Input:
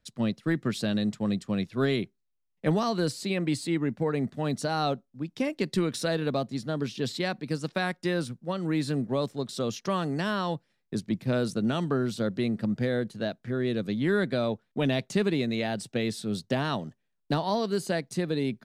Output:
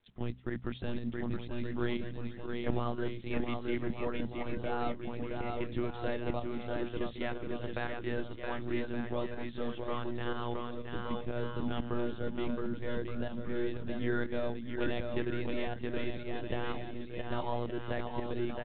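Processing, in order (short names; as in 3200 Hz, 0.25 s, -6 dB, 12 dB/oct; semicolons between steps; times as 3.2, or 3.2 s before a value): monotone LPC vocoder at 8 kHz 120 Hz; de-hum 62.98 Hz, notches 4; on a send: bouncing-ball echo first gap 0.67 s, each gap 0.75×, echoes 5; on the sum: pump 122 bpm, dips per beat 1, -7 dB, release 0.129 s; gain -7.5 dB; µ-law 64 kbps 8000 Hz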